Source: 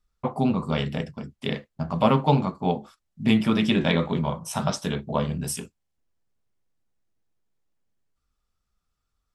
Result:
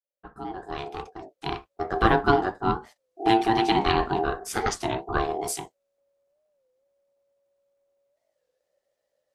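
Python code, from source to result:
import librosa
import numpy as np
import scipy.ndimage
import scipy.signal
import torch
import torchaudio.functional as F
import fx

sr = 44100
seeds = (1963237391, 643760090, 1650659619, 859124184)

y = fx.fade_in_head(x, sr, length_s=1.97)
y = y * np.sin(2.0 * np.pi * 560.0 * np.arange(len(y)) / sr)
y = fx.record_warp(y, sr, rpm=33.33, depth_cents=160.0)
y = y * 10.0 ** (2.5 / 20.0)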